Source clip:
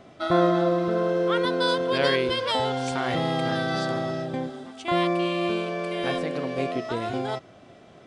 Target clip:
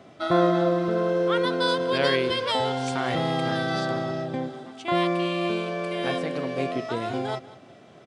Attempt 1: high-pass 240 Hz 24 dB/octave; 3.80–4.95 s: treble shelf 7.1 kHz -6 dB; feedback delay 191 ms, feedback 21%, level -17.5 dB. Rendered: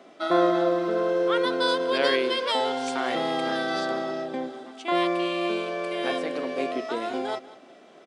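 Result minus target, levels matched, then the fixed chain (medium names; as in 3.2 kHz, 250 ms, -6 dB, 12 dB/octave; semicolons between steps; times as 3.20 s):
125 Hz band -13.0 dB
high-pass 87 Hz 24 dB/octave; 3.80–4.95 s: treble shelf 7.1 kHz -6 dB; feedback delay 191 ms, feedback 21%, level -17.5 dB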